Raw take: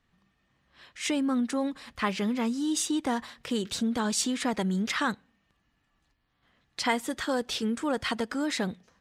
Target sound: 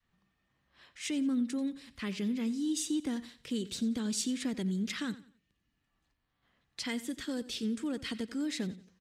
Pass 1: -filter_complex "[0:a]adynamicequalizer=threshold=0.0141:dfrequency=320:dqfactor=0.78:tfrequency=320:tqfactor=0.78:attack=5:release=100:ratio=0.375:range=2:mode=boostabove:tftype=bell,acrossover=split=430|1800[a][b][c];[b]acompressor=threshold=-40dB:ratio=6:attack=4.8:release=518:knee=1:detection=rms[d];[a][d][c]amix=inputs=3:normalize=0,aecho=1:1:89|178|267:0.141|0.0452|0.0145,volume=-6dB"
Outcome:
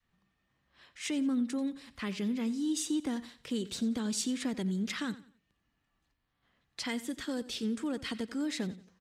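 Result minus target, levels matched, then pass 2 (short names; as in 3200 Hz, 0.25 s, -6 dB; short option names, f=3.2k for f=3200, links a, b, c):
compressor: peak gain reduction -8.5 dB
-filter_complex "[0:a]adynamicequalizer=threshold=0.0141:dfrequency=320:dqfactor=0.78:tfrequency=320:tqfactor=0.78:attack=5:release=100:ratio=0.375:range=2:mode=boostabove:tftype=bell,acrossover=split=430|1800[a][b][c];[b]acompressor=threshold=-50dB:ratio=6:attack=4.8:release=518:knee=1:detection=rms[d];[a][d][c]amix=inputs=3:normalize=0,aecho=1:1:89|178|267:0.141|0.0452|0.0145,volume=-6dB"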